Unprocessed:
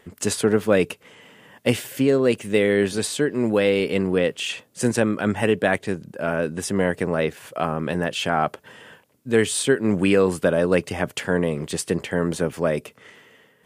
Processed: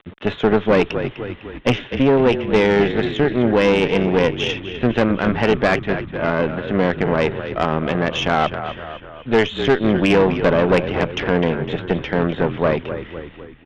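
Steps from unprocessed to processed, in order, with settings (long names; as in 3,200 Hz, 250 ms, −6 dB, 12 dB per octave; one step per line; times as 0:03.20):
bit reduction 8 bits
downsampling to 8,000 Hz
on a send: echo with shifted repeats 252 ms, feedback 55%, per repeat −40 Hz, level −10.5 dB
on the sum: tube saturation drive 16 dB, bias 0.7
level +8 dB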